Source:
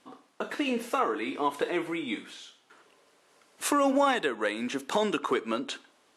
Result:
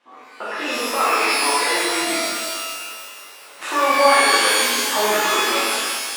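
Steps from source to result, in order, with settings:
camcorder AGC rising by 5.7 dB per second
resonant band-pass 1,300 Hz, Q 0.64
reverb with rising layers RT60 1.7 s, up +12 semitones, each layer −2 dB, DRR −10 dB

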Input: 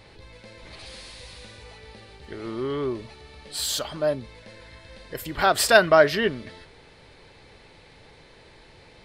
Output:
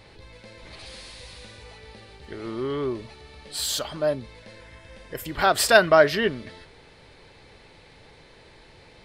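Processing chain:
0:04.61–0:05.26: parametric band 4,200 Hz −9 dB 0.27 octaves

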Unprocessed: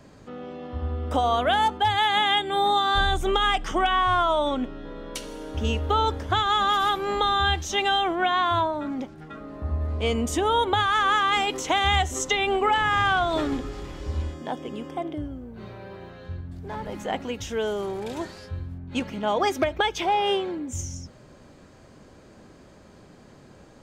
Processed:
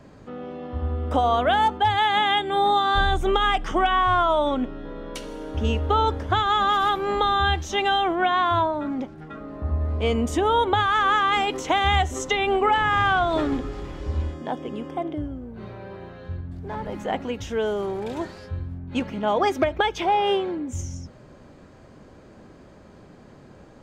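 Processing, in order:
high-shelf EQ 3,400 Hz −8.5 dB
level +2.5 dB

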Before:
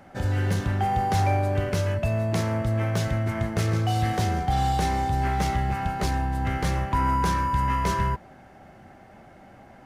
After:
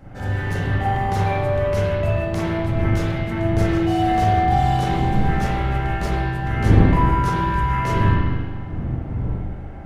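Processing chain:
wind on the microphone 140 Hz −28 dBFS
spring reverb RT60 1.6 s, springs 39/48 ms, chirp 65 ms, DRR −8 dB
level −4 dB

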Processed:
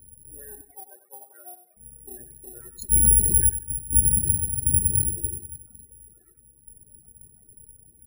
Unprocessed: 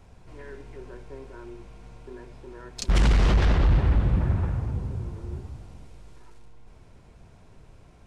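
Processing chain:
lower of the sound and its delayed copy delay 0.49 ms
0:03.49–0:03.93: noise gate −16 dBFS, range −16 dB
reverb reduction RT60 0.98 s
0:04.65–0:05.28: tilt shelving filter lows +9.5 dB
spectral peaks only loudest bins 16
0:00.61–0:01.77: high-pass with resonance 750 Hz, resonance Q 4.9
repeating echo 96 ms, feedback 28%, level −11.5 dB
bad sample-rate conversion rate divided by 4×, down filtered, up zero stuff
level that may rise only so fast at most 510 dB per second
level −3 dB

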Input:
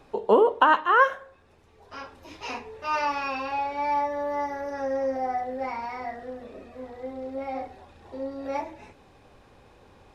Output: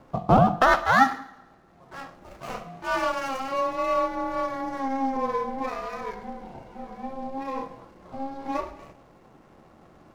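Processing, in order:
running median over 15 samples
coupled-rooms reverb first 0.71 s, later 1.8 s, from −18 dB, DRR 12 dB
ring modulation 270 Hz
level +4 dB

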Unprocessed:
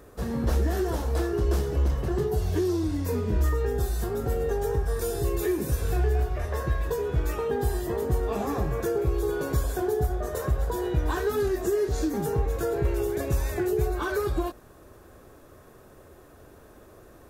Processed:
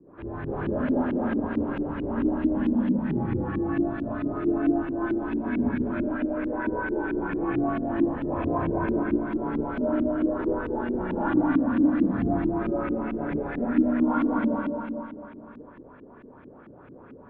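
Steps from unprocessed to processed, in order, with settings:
four-comb reverb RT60 2.7 s, combs from 33 ms, DRR −7.5 dB
single-sideband voice off tune −120 Hz 170–3,500 Hz
auto-filter low-pass saw up 4.5 Hz 260–2,600 Hz
level −6 dB

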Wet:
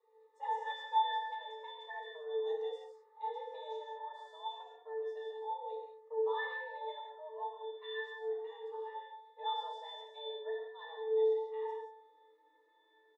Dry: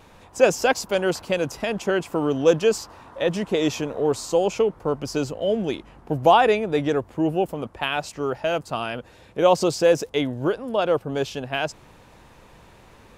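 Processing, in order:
0:04.97–0:05.50: parametric band 170 Hz −9 dB 0.43 octaves
frequency shifter +300 Hz
high-shelf EQ 6,400 Hz +7 dB
resonances in every octave A, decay 0.69 s
reverb whose tail is shaped and stops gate 210 ms flat, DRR 0 dB
barber-pole flanger 2.1 ms +0.35 Hz
level +5 dB

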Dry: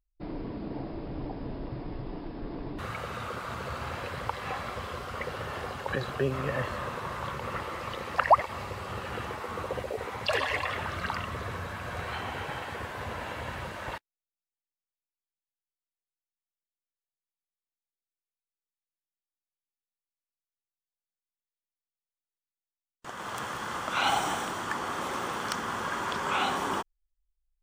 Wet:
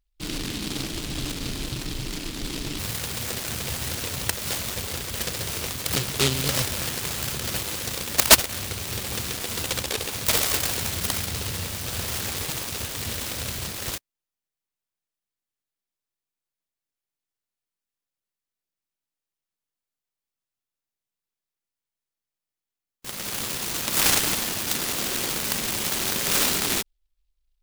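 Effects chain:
short delay modulated by noise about 3,500 Hz, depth 0.42 ms
level +6 dB

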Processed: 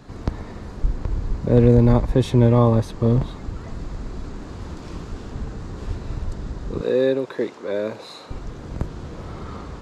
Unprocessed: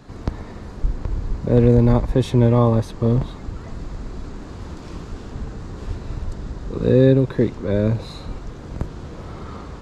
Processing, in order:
0:06.81–0:08.31: high-pass filter 430 Hz 12 dB per octave

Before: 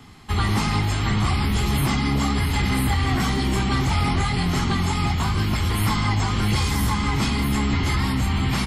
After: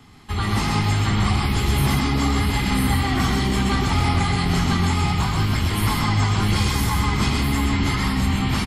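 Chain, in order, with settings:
automatic gain control gain up to 3 dB
on a send: single-tap delay 127 ms −3.5 dB
on the sum: level −3 dB

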